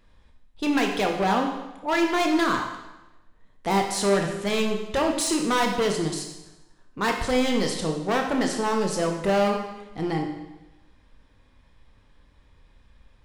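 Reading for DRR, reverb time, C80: 2.5 dB, 1.0 s, 7.5 dB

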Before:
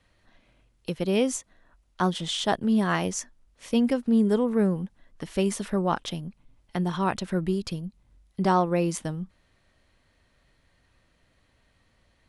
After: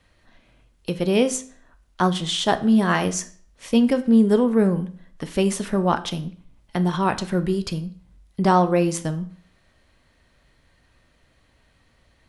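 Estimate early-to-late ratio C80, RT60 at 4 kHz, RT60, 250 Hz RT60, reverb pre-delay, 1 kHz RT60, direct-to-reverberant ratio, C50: 19.5 dB, 0.45 s, 0.50 s, 0.50 s, 10 ms, 0.50 s, 10.0 dB, 16.0 dB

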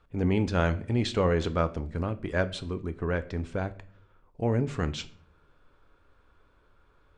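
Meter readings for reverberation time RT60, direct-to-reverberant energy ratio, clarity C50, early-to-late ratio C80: 0.50 s, 11.0 dB, 18.0 dB, 21.5 dB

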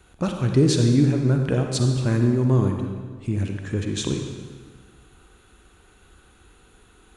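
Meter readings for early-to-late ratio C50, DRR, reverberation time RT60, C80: 4.0 dB, 3.5 dB, 1.6 s, 5.5 dB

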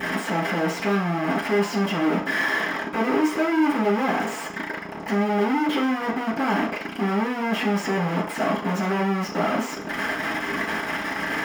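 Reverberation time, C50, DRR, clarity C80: 0.45 s, 8.5 dB, -13.0 dB, 13.0 dB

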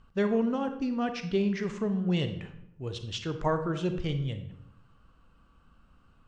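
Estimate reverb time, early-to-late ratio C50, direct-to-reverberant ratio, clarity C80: 0.80 s, 9.5 dB, 7.5 dB, 12.5 dB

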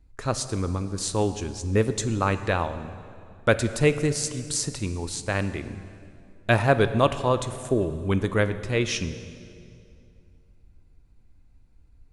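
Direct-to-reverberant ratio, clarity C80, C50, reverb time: 11.0 dB, 13.0 dB, 12.0 dB, 2.5 s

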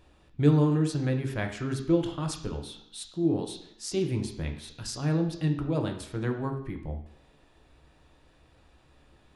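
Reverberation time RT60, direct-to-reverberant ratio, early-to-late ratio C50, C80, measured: 0.70 s, 4.0 dB, 9.0 dB, 11.0 dB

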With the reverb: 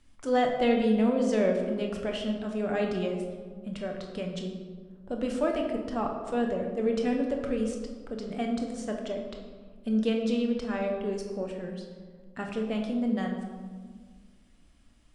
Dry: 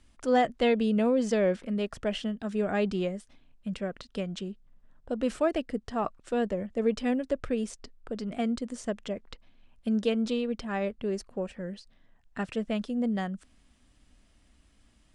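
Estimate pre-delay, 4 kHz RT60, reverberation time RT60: 7 ms, 0.90 s, 1.7 s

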